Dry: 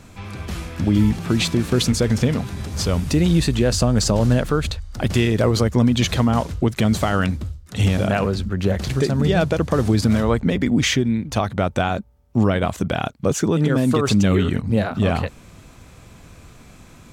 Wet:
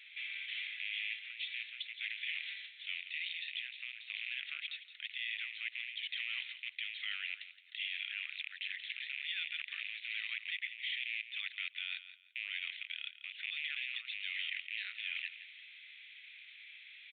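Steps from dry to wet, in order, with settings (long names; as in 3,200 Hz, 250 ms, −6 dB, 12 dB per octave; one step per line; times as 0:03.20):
loose part that buzzes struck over −20 dBFS, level −23 dBFS
Chebyshev high-pass filter 2,000 Hz, order 5
reversed playback
downward compressor 12 to 1, threshold −38 dBFS, peak gain reduction 20.5 dB
reversed playback
brickwall limiter −31 dBFS, peak gain reduction 6.5 dB
on a send: repeating echo 169 ms, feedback 25%, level −13 dB
on the sum: downsampling to 8,000 Hz
level +4 dB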